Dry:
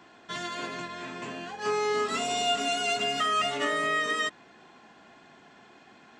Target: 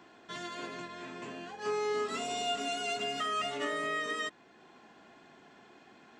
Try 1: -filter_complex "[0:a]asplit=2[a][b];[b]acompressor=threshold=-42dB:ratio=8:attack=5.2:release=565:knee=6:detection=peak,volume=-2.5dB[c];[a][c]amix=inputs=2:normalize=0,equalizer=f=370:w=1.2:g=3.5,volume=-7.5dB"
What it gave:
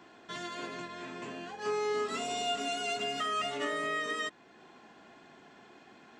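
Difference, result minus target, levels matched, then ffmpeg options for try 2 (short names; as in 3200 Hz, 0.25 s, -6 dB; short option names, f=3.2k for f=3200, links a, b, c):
compressor: peak gain reduction -8.5 dB
-filter_complex "[0:a]asplit=2[a][b];[b]acompressor=threshold=-52dB:ratio=8:attack=5.2:release=565:knee=6:detection=peak,volume=-2.5dB[c];[a][c]amix=inputs=2:normalize=0,equalizer=f=370:w=1.2:g=3.5,volume=-7.5dB"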